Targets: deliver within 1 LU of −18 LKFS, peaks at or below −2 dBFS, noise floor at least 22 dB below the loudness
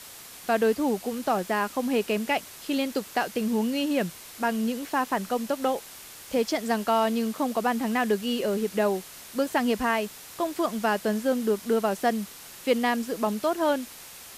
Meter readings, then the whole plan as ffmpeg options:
background noise floor −45 dBFS; target noise floor −49 dBFS; integrated loudness −27.0 LKFS; sample peak −12.0 dBFS; target loudness −18.0 LKFS
→ -af "afftdn=noise_reduction=6:noise_floor=-45"
-af "volume=9dB"

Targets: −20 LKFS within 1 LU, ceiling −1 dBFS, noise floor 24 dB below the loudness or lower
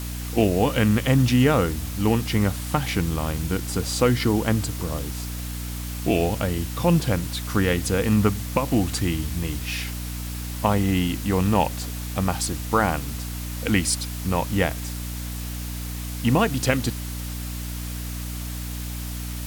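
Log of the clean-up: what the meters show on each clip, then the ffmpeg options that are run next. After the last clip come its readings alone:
mains hum 60 Hz; hum harmonics up to 300 Hz; level of the hum −29 dBFS; background noise floor −31 dBFS; target noise floor −49 dBFS; integrated loudness −24.5 LKFS; sample peak −6.5 dBFS; target loudness −20.0 LKFS
→ -af "bandreject=frequency=60:width_type=h:width=6,bandreject=frequency=120:width_type=h:width=6,bandreject=frequency=180:width_type=h:width=6,bandreject=frequency=240:width_type=h:width=6,bandreject=frequency=300:width_type=h:width=6"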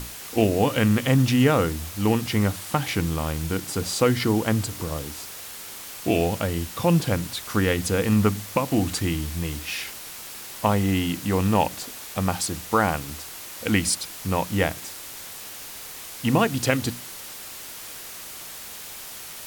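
mains hum none found; background noise floor −39 dBFS; target noise floor −48 dBFS
→ -af "afftdn=noise_reduction=9:noise_floor=-39"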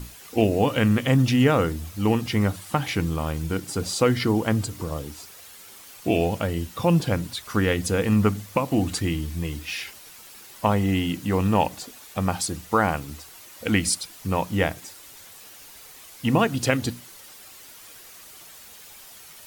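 background noise floor −46 dBFS; target noise floor −48 dBFS
→ -af "afftdn=noise_reduction=6:noise_floor=-46"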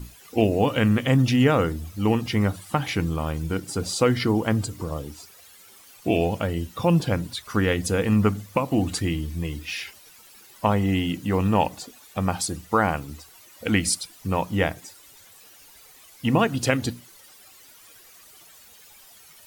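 background noise floor −51 dBFS; integrated loudness −24.0 LKFS; sample peak −6.0 dBFS; target loudness −20.0 LKFS
→ -af "volume=4dB"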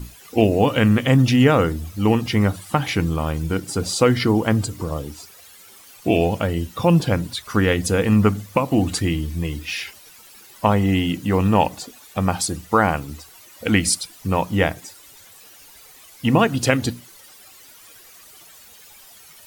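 integrated loudness −20.0 LKFS; sample peak −2.0 dBFS; background noise floor −47 dBFS

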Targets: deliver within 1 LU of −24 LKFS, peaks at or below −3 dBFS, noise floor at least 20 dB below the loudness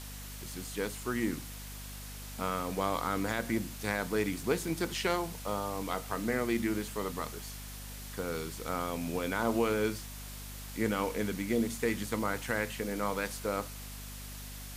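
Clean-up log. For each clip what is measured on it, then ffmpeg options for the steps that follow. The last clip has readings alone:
mains hum 50 Hz; hum harmonics up to 250 Hz; level of the hum −43 dBFS; background noise floor −44 dBFS; target noise floor −55 dBFS; integrated loudness −34.5 LKFS; sample peak −16.0 dBFS; target loudness −24.0 LKFS
→ -af "bandreject=frequency=50:width_type=h:width=6,bandreject=frequency=100:width_type=h:width=6,bandreject=frequency=150:width_type=h:width=6,bandreject=frequency=200:width_type=h:width=6,bandreject=frequency=250:width_type=h:width=6"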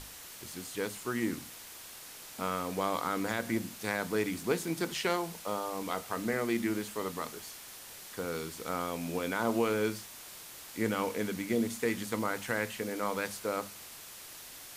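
mains hum none found; background noise floor −48 dBFS; target noise floor −54 dBFS
→ -af "afftdn=noise_reduction=6:noise_floor=-48"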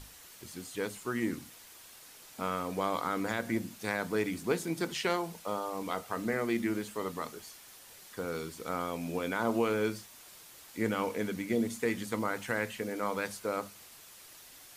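background noise floor −54 dBFS; integrated loudness −34.0 LKFS; sample peak −16.5 dBFS; target loudness −24.0 LKFS
→ -af "volume=10dB"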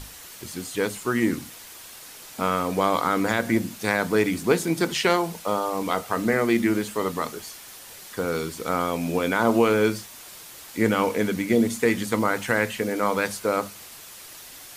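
integrated loudness −24.0 LKFS; sample peak −6.5 dBFS; background noise floor −44 dBFS

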